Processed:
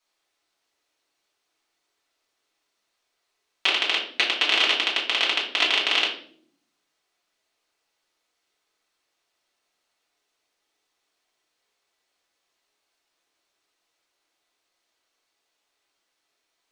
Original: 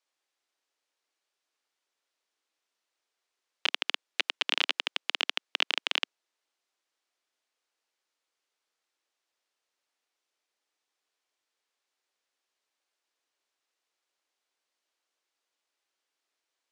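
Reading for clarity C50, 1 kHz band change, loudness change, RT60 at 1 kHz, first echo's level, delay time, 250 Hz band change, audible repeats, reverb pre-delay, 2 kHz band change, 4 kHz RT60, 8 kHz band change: 6.5 dB, +9.0 dB, +8.5 dB, 0.45 s, none, none, +11.5 dB, none, 3 ms, +8.5 dB, 0.45 s, +7.5 dB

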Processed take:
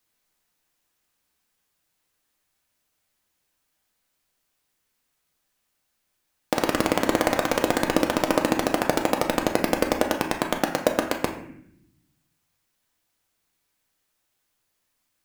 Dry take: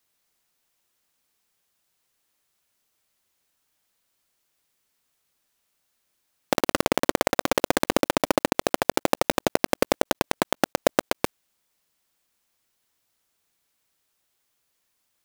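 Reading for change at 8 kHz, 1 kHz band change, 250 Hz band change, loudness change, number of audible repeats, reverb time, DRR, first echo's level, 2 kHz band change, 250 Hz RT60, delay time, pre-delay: -1.5 dB, +0.5 dB, +2.0 dB, +0.5 dB, none, 0.70 s, 2.0 dB, none, +1.0 dB, 1.2 s, none, 4 ms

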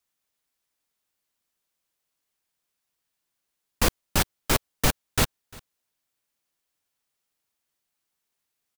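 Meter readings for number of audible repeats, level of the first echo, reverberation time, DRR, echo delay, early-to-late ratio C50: 1, -23.5 dB, none, none, 0.349 s, none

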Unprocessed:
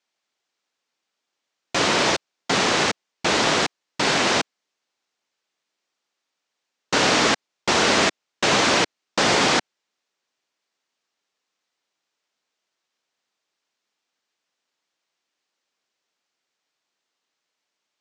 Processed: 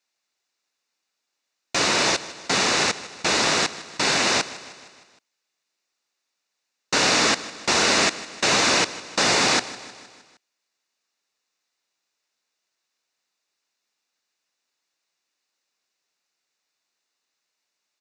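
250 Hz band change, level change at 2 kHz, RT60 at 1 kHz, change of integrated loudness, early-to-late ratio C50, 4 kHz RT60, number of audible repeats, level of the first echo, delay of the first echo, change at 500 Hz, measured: -3.0 dB, -0.5 dB, none, 0.0 dB, none, none, 4, -17.0 dB, 0.155 s, -3.0 dB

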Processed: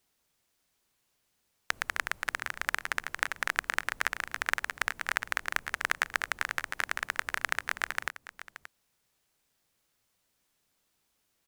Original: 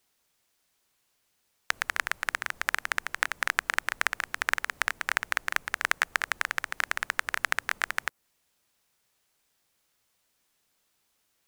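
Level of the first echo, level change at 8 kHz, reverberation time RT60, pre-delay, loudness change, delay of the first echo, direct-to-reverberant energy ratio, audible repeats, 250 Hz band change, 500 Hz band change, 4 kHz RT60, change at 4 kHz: -14.5 dB, -3.0 dB, none, none, -2.5 dB, 0.577 s, none, 1, +0.5 dB, -1.5 dB, none, -3.0 dB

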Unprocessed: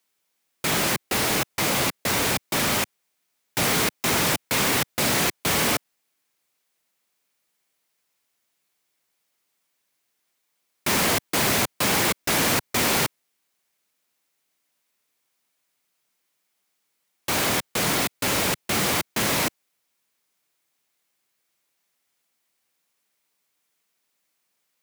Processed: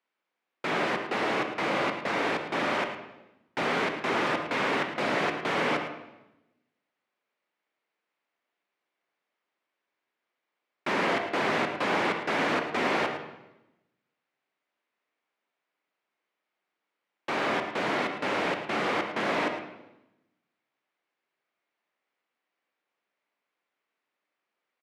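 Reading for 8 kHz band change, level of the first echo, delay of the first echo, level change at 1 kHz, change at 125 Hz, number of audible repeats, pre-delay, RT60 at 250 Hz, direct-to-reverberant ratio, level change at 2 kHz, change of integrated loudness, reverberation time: -23.5 dB, -11.5 dB, 0.109 s, -1.0 dB, -11.0 dB, 1, 31 ms, 1.2 s, 5.0 dB, -3.0 dB, -6.0 dB, 0.95 s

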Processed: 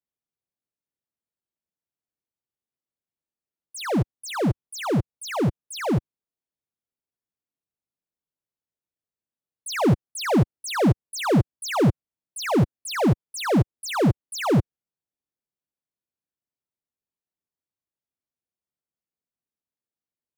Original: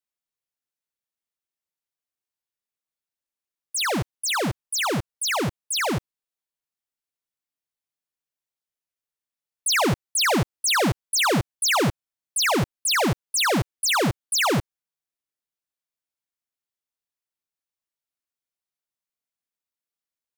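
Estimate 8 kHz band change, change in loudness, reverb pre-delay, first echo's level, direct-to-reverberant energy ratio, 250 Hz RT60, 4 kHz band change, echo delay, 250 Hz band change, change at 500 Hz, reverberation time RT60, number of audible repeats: -11.0 dB, -1.5 dB, none, none, none, none, -10.0 dB, none, +4.5 dB, +1.5 dB, none, none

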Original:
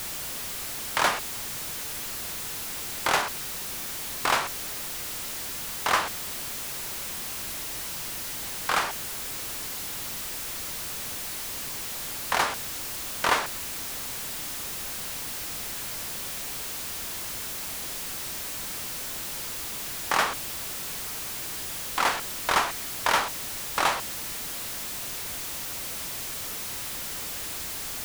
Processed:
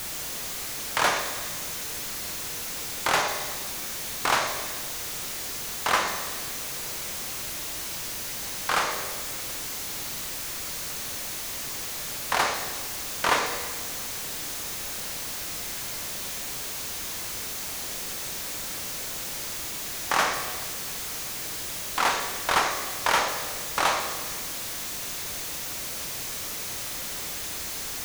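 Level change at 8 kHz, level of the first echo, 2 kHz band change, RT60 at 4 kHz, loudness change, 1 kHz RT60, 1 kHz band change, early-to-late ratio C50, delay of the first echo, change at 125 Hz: +1.5 dB, none, +1.0 dB, 1.3 s, +1.0 dB, 1.5 s, +1.0 dB, 6.0 dB, none, +0.5 dB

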